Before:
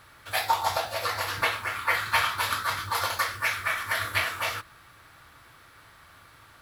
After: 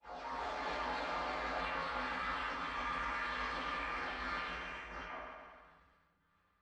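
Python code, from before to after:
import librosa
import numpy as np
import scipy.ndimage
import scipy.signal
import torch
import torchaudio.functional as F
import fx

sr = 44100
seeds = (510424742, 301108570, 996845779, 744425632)

y = fx.spec_delay(x, sr, highs='early', ms=401)
y = fx.air_absorb(y, sr, metres=67.0)
y = fx.room_early_taps(y, sr, ms=(19, 34), db=(-17.5, -17.5))
y = fx.level_steps(y, sr, step_db=18)
y = fx.granulator(y, sr, seeds[0], grain_ms=260.0, per_s=29.0, spray_ms=766.0, spread_st=0)
y = fx.pitch_keep_formants(y, sr, semitones=-11.0)
y = fx.high_shelf(y, sr, hz=2900.0, db=-11.5)
y = fx.rev_fdn(y, sr, rt60_s=1.2, lf_ratio=0.9, hf_ratio=0.95, size_ms=34.0, drr_db=-5.5)
y = fx.sustainer(y, sr, db_per_s=32.0)
y = y * librosa.db_to_amplitude(1.0)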